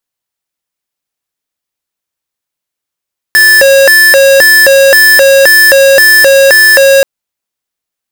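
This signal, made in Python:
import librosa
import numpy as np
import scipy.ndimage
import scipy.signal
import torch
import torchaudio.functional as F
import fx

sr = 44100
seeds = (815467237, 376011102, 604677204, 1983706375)

y = fx.siren(sr, length_s=3.68, kind='hi-lo', low_hz=546.0, high_hz=1750.0, per_s=1.9, wave='square', level_db=-3.5)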